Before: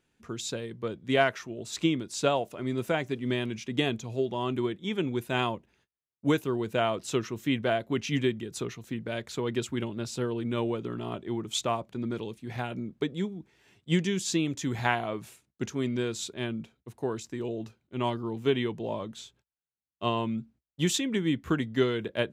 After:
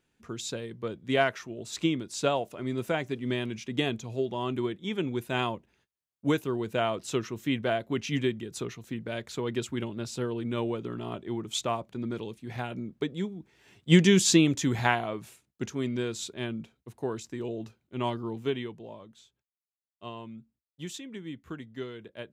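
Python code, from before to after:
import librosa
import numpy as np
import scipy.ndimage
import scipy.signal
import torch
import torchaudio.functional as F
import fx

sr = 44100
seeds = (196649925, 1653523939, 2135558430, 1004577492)

y = fx.gain(x, sr, db=fx.line((13.39, -1.0), (14.15, 9.5), (15.14, -1.0), (18.31, -1.0), (18.98, -12.5)))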